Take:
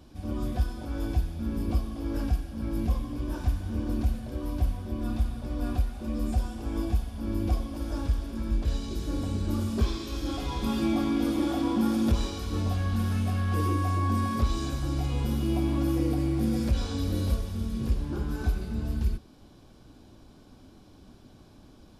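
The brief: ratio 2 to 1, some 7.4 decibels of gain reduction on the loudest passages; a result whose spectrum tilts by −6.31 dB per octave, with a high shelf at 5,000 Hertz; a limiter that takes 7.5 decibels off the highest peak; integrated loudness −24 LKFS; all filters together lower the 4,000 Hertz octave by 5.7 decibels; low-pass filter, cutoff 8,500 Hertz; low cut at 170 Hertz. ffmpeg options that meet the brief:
ffmpeg -i in.wav -af "highpass=170,lowpass=8500,equalizer=frequency=4000:width_type=o:gain=-5.5,highshelf=frequency=5000:gain=-3.5,acompressor=threshold=-37dB:ratio=2,volume=16.5dB,alimiter=limit=-15dB:level=0:latency=1" out.wav

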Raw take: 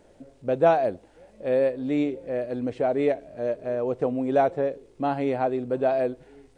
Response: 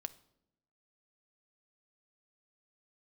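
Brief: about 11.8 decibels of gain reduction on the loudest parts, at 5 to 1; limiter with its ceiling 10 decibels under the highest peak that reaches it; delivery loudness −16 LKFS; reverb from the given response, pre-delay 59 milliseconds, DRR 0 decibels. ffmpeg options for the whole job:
-filter_complex "[0:a]acompressor=threshold=-27dB:ratio=5,alimiter=level_in=3dB:limit=-24dB:level=0:latency=1,volume=-3dB,asplit=2[link_01][link_02];[1:a]atrim=start_sample=2205,adelay=59[link_03];[link_02][link_03]afir=irnorm=-1:irlink=0,volume=3dB[link_04];[link_01][link_04]amix=inputs=2:normalize=0,volume=17dB"

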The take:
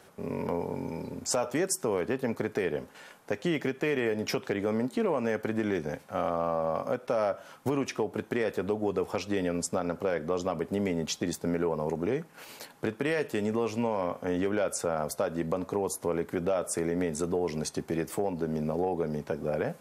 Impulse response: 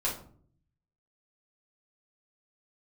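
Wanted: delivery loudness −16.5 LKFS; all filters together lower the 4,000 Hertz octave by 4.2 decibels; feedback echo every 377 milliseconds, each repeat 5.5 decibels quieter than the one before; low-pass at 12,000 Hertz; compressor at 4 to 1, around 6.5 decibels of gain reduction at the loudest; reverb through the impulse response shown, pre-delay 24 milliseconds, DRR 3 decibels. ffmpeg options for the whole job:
-filter_complex "[0:a]lowpass=12000,equalizer=frequency=4000:width_type=o:gain=-6,acompressor=threshold=-32dB:ratio=4,aecho=1:1:377|754|1131|1508|1885|2262|2639:0.531|0.281|0.149|0.079|0.0419|0.0222|0.0118,asplit=2[link_01][link_02];[1:a]atrim=start_sample=2205,adelay=24[link_03];[link_02][link_03]afir=irnorm=-1:irlink=0,volume=-9.5dB[link_04];[link_01][link_04]amix=inputs=2:normalize=0,volume=17dB"

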